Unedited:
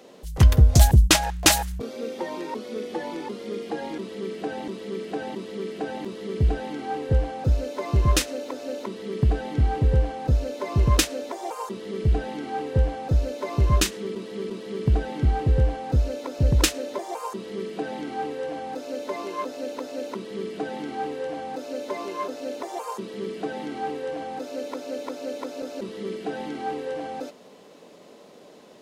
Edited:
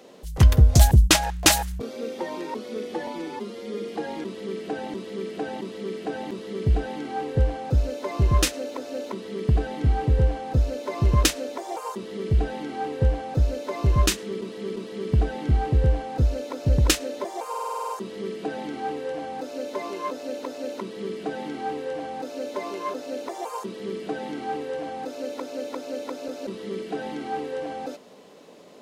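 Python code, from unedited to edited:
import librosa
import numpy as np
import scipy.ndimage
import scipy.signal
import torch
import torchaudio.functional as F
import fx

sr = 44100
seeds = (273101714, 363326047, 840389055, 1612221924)

y = fx.edit(x, sr, fx.stretch_span(start_s=3.07, length_s=0.52, factor=1.5),
    fx.stutter(start_s=17.23, slice_s=0.05, count=9), tone=tone)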